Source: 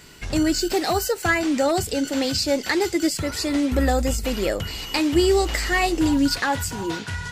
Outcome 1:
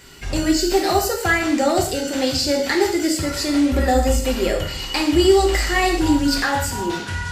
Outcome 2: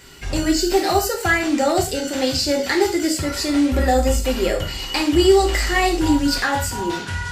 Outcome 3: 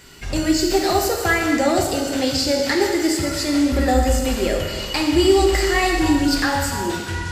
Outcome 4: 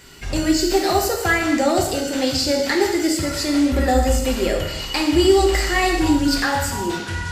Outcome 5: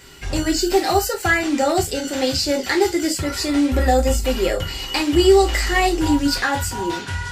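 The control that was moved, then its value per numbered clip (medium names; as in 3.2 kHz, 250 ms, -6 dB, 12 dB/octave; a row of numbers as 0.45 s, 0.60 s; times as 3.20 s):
gated-style reverb, gate: 210 ms, 140 ms, 510 ms, 320 ms, 80 ms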